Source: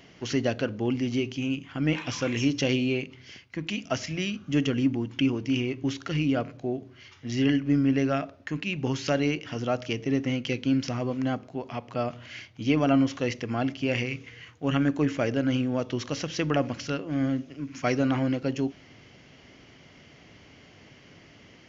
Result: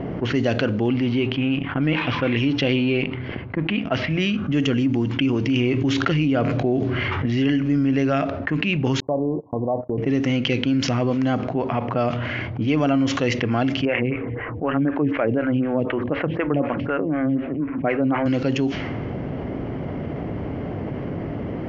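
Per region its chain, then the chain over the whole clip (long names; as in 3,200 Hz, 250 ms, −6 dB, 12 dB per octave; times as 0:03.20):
0:00.88–0:04.10: mu-law and A-law mismatch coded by A + low-pass filter 4,100 Hz 24 dB per octave
0:05.46–0:07.26: high-shelf EQ 6,300 Hz −8.5 dB + envelope flattener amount 50%
0:09.00–0:09.98: Chebyshev low-pass filter 1,100 Hz, order 10 + noise gate −38 dBFS, range −38 dB + low-shelf EQ 480 Hz −11.5 dB
0:13.85–0:18.26: low-pass filter 2,500 Hz 24 dB per octave + phaser with staggered stages 4 Hz
whole clip: dynamic equaliser 5,600 Hz, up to −5 dB, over −51 dBFS, Q 1.6; low-pass that shuts in the quiet parts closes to 670 Hz, open at −21.5 dBFS; envelope flattener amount 70%; level +1.5 dB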